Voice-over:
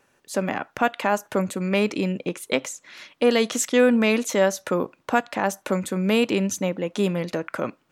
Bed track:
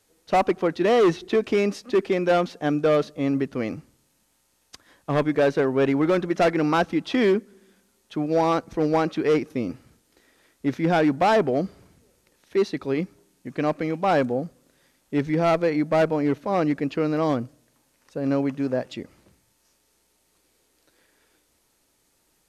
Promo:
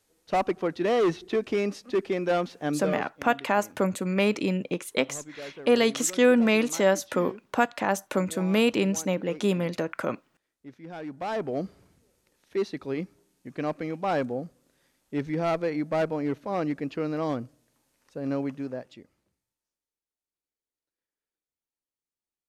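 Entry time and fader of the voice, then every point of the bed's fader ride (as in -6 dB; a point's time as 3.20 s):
2.45 s, -2.0 dB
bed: 2.75 s -5 dB
3.17 s -21 dB
10.88 s -21 dB
11.59 s -6 dB
18.51 s -6 dB
20.03 s -32 dB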